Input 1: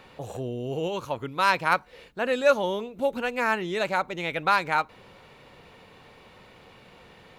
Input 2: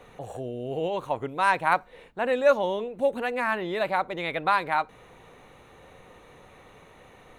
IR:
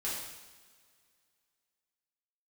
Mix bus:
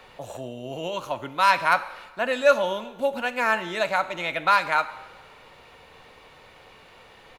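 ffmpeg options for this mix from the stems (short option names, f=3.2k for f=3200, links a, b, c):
-filter_complex "[0:a]highpass=530,volume=1dB,asplit=2[a][b];[b]volume=-13dB[c];[1:a]adelay=3,volume=-7.5dB[d];[2:a]atrim=start_sample=2205[e];[c][e]afir=irnorm=-1:irlink=0[f];[a][d][f]amix=inputs=3:normalize=0,lowshelf=f=180:g=6"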